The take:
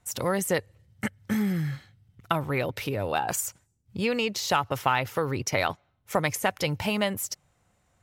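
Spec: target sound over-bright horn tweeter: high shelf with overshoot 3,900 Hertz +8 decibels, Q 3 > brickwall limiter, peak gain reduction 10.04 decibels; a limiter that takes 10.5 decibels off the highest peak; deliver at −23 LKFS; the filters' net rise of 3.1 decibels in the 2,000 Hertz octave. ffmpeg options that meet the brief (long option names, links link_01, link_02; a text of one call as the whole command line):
ffmpeg -i in.wav -af "equalizer=frequency=2000:width_type=o:gain=7,alimiter=limit=-17dB:level=0:latency=1,highshelf=frequency=3900:width_type=q:width=3:gain=8,volume=5dB,alimiter=limit=-10dB:level=0:latency=1" out.wav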